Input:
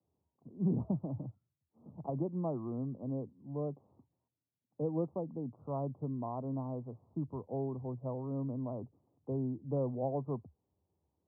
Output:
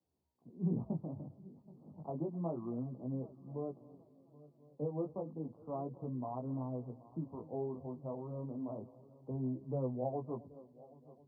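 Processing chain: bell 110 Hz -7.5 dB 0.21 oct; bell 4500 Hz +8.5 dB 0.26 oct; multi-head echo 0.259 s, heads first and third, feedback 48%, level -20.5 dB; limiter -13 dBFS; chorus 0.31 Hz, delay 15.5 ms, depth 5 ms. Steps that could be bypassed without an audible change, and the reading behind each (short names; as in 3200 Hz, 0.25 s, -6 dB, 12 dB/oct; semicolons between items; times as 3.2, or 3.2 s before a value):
bell 4500 Hz: input band ends at 1100 Hz; limiter -13 dBFS: input peak -22.5 dBFS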